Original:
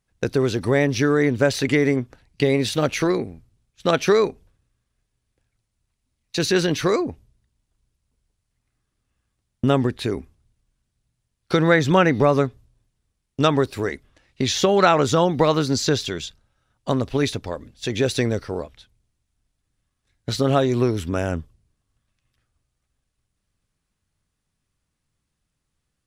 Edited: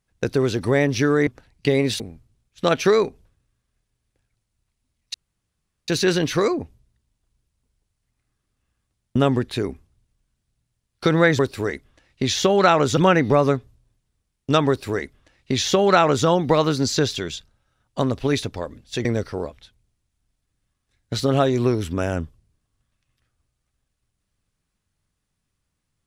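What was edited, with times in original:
1.27–2.02 s: delete
2.75–3.22 s: delete
6.36 s: insert room tone 0.74 s
13.58–15.16 s: copy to 11.87 s
17.95–18.21 s: delete

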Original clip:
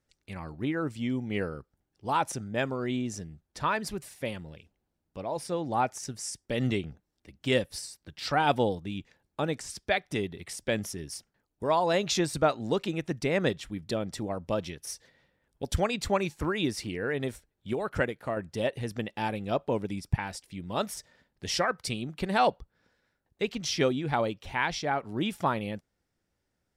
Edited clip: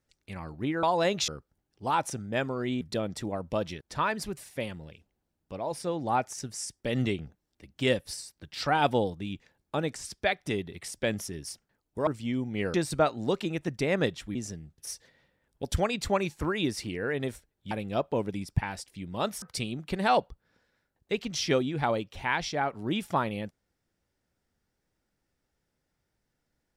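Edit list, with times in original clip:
0.83–1.50 s: swap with 11.72–12.17 s
3.03–3.46 s: swap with 13.78–14.78 s
17.71–19.27 s: delete
20.98–21.72 s: delete

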